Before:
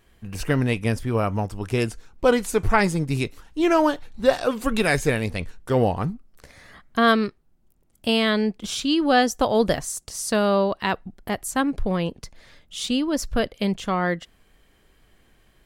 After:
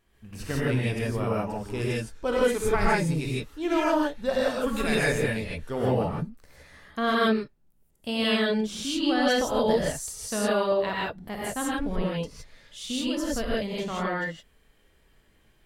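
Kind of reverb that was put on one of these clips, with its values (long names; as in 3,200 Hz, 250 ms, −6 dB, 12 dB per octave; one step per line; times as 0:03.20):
reverb whose tail is shaped and stops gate 190 ms rising, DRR −6 dB
level −10.5 dB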